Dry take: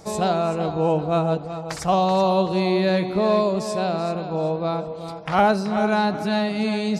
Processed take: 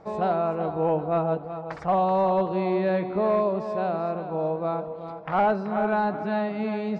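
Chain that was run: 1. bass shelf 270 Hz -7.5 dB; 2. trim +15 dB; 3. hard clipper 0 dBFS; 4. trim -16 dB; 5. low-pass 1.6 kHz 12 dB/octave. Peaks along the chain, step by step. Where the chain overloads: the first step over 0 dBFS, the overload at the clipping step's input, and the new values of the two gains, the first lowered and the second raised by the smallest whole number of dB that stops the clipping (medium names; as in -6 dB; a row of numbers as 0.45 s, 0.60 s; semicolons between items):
-8.0 dBFS, +7.0 dBFS, 0.0 dBFS, -16.0 dBFS, -15.5 dBFS; step 2, 7.0 dB; step 2 +8 dB, step 4 -9 dB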